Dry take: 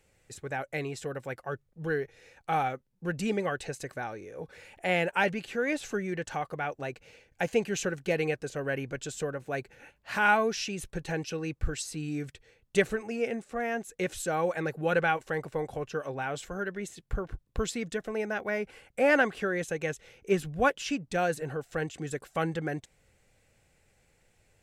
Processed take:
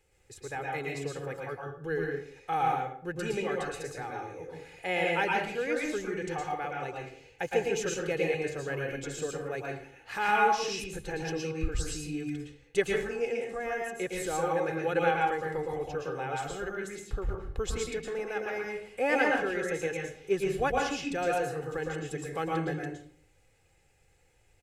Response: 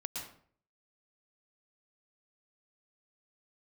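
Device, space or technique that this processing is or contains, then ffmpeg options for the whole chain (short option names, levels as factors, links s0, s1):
microphone above a desk: -filter_complex "[0:a]aecho=1:1:2.4:0.51[s0];[1:a]atrim=start_sample=2205[s1];[s0][s1]afir=irnorm=-1:irlink=0,volume=0.841"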